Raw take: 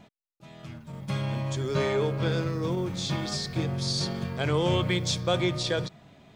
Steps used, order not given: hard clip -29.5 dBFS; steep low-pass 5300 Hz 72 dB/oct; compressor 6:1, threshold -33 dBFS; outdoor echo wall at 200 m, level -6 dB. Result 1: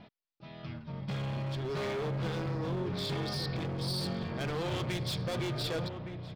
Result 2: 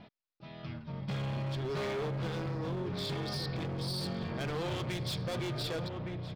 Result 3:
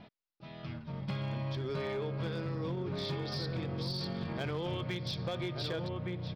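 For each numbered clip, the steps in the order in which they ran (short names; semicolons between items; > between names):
steep low-pass > hard clip > compressor > outdoor echo; steep low-pass > hard clip > outdoor echo > compressor; outdoor echo > compressor > steep low-pass > hard clip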